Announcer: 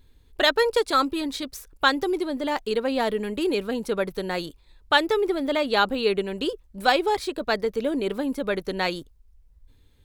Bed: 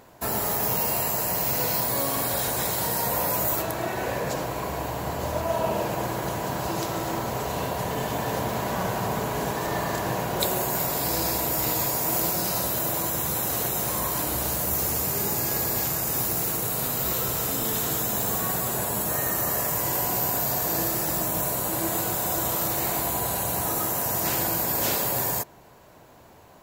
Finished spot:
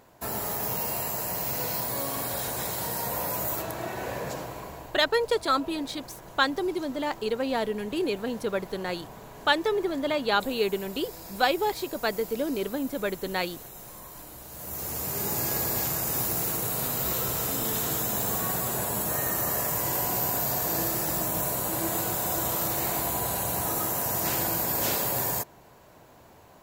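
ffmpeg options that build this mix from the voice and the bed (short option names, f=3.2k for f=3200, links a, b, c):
-filter_complex "[0:a]adelay=4550,volume=-3.5dB[a];[1:a]volume=10.5dB,afade=t=out:st=4.24:d=0.78:silence=0.237137,afade=t=in:st=14.49:d=0.92:silence=0.16788[b];[a][b]amix=inputs=2:normalize=0"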